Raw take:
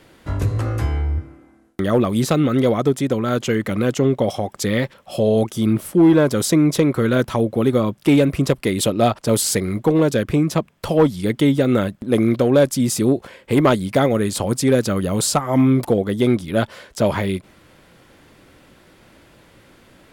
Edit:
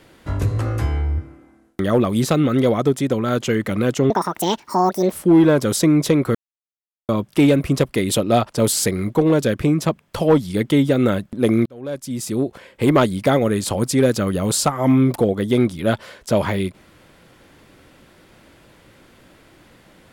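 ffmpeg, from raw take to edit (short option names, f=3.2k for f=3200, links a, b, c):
-filter_complex "[0:a]asplit=6[a][b][c][d][e][f];[a]atrim=end=4.104[g];[b]atrim=start=4.1:end=5.81,asetpts=PTS-STARTPTS,asetrate=74088,aresample=44100[h];[c]atrim=start=5.806:end=7.04,asetpts=PTS-STARTPTS,afade=t=out:st=1.23:d=0.004:c=hsin[i];[d]atrim=start=7.04:end=7.78,asetpts=PTS-STARTPTS,volume=0[j];[e]atrim=start=7.78:end=12.35,asetpts=PTS-STARTPTS,afade=t=in:d=0.004:c=hsin,afade=t=out:st=4.566:d=0.004:c=hsin[k];[f]atrim=start=12.35,asetpts=PTS-STARTPTS,afade=t=in:d=1.2[l];[g][h]acrossfade=d=0.004:c1=hsin:c2=hsin[m];[i][j][k][l]concat=n=4:v=0:a=1[n];[m][n]acrossfade=d=0.004:c1=hsin:c2=hsin"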